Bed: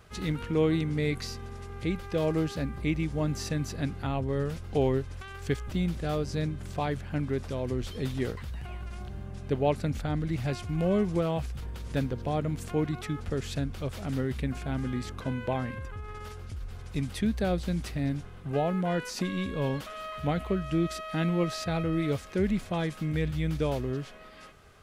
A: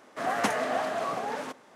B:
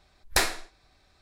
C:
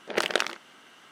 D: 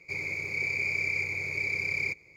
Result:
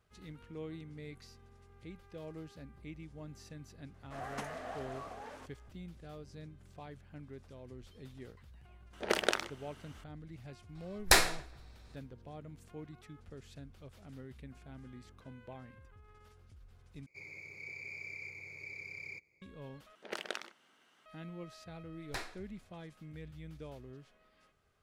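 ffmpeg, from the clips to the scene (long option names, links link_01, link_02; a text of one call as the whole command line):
ffmpeg -i bed.wav -i cue0.wav -i cue1.wav -i cue2.wav -i cue3.wav -filter_complex "[3:a]asplit=2[link_01][link_02];[2:a]asplit=2[link_03][link_04];[0:a]volume=-19dB[link_05];[link_01]equalizer=frequency=2600:width=0.44:gain=-4[link_06];[link_03]asplit=2[link_07][link_08];[link_08]adelay=138,lowpass=frequency=2100:poles=1,volume=-21.5dB,asplit=2[link_09][link_10];[link_10]adelay=138,lowpass=frequency=2100:poles=1,volume=0.42,asplit=2[link_11][link_12];[link_12]adelay=138,lowpass=frequency=2100:poles=1,volume=0.42[link_13];[link_07][link_09][link_11][link_13]amix=inputs=4:normalize=0[link_14];[link_04]highshelf=frequency=6600:gain=-11.5[link_15];[link_05]asplit=3[link_16][link_17][link_18];[link_16]atrim=end=17.064[link_19];[4:a]atrim=end=2.36,asetpts=PTS-STARTPTS,volume=-16dB[link_20];[link_17]atrim=start=19.416:end=19.954[link_21];[link_02]atrim=end=1.11,asetpts=PTS-STARTPTS,volume=-15dB[link_22];[link_18]atrim=start=21.056[link_23];[1:a]atrim=end=1.75,asetpts=PTS-STARTPTS,volume=-15dB,afade=type=in:duration=0.004:curve=hsin,afade=type=out:start_time=1.746:duration=0.004:curve=hsin,adelay=3940[link_24];[link_06]atrim=end=1.11,asetpts=PTS-STARTPTS,volume=-3dB,afade=type=in:duration=0.004:curve=hsin,afade=type=out:start_time=1.106:duration=0.004:curve=hsin,adelay=8930[link_25];[link_14]atrim=end=1.21,asetpts=PTS-STARTPTS,afade=type=in:duration=0.004:curve=hsin,afade=type=out:start_time=1.206:duration=0.004:curve=hsin,adelay=10750[link_26];[link_15]atrim=end=1.21,asetpts=PTS-STARTPTS,volume=-16dB,afade=type=in:duration=0.004:curve=hsin,afade=type=out:start_time=1.206:duration=0.004:curve=hsin,adelay=21780[link_27];[link_19][link_20]acrossfade=duration=0.004:curve1=hsin:curve2=hsin[link_28];[link_28][link_21]acrossfade=duration=0.004:curve1=hsin:curve2=hsin[link_29];[link_29][link_22]acrossfade=duration=0.004:curve1=hsin:curve2=hsin[link_30];[link_30][link_23]acrossfade=duration=0.004:curve1=hsin:curve2=hsin[link_31];[link_31][link_24][link_25][link_26][link_27]amix=inputs=5:normalize=0" out.wav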